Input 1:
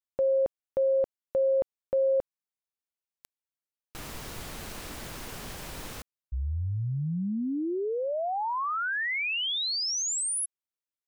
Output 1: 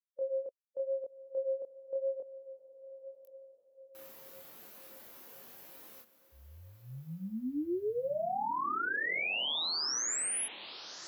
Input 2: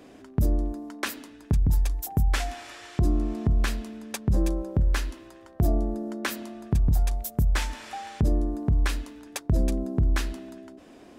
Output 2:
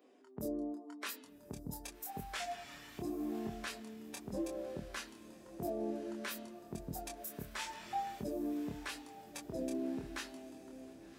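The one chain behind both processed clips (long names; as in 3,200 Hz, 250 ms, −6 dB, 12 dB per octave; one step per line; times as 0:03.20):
spectral dynamics exaggerated over time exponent 1.5
high-pass filter 310 Hz 12 dB per octave
brickwall limiter −30.5 dBFS
feedback delay with all-pass diffusion 1,161 ms, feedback 44%, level −14 dB
chorus effect 0.87 Hz, depth 5.2 ms
level +2.5 dB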